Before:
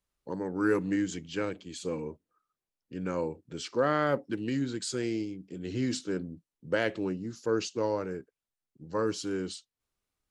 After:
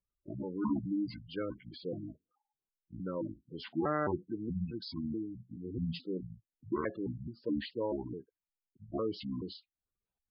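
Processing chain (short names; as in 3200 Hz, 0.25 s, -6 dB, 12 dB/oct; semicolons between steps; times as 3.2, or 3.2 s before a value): trilling pitch shifter -7 st, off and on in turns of 0.214 s; downsampling 11025 Hz; spectral gate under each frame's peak -15 dB strong; gain -4.5 dB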